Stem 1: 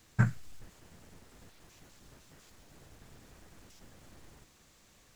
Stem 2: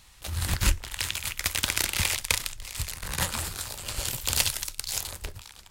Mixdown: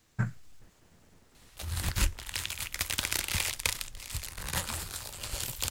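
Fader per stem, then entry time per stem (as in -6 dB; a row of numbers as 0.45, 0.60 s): -4.5, -4.5 dB; 0.00, 1.35 s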